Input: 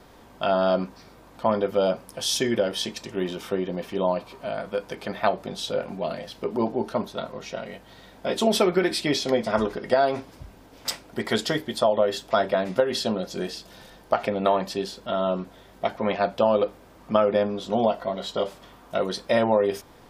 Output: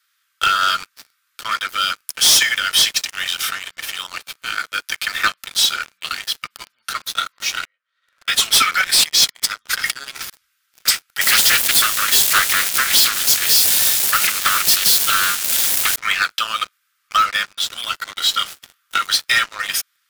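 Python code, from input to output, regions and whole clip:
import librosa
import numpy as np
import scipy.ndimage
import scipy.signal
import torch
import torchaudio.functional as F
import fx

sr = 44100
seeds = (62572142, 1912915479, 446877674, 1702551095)

y = fx.chain(x, sr, fx.leveller(passes=2),
    fx.bandpass_q(hz=520.0, q=3.9),
    fx.pre_swell(db_per_s=62.0), at=(7.65, 8.28))
y = fx.chain(y, sr, fx.bass_treble(bass_db=15, treble_db=5),
    fx.over_compress(threshold_db=-30.0, ratio=-1.0), at=(8.84, 10.3))
y = fx.chain(y, sr, fx.crossing_spikes(level_db=-21.5),
    fx.doppler_dist(depth_ms=0.68), at=(11.21, 15.96))
y = scipy.signal.sosfilt(scipy.signal.ellip(4, 1.0, 40, 1300.0, 'highpass', fs=sr, output='sos'), y)
y = fx.high_shelf(y, sr, hz=7800.0, db=10.0)
y = fx.leveller(y, sr, passes=5)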